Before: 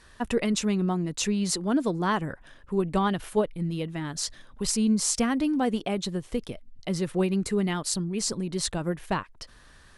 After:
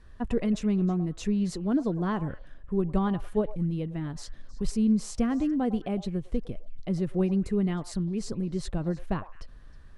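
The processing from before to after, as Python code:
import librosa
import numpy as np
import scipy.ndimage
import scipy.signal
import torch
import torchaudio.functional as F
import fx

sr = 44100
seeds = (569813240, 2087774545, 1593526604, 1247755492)

y = fx.tilt_eq(x, sr, slope=-3.0)
y = fx.notch(y, sr, hz=910.0, q=17.0)
y = fx.echo_stepped(y, sr, ms=105, hz=770.0, octaves=1.4, feedback_pct=70, wet_db=-11)
y = y * librosa.db_to_amplitude(-6.5)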